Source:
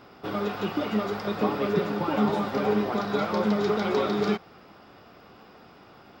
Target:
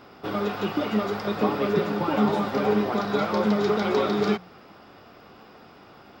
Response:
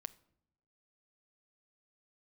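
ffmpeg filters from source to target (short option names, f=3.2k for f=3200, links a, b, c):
-af "bandreject=f=60:t=h:w=6,bandreject=f=120:t=h:w=6,bandreject=f=180:t=h:w=6,volume=2dB"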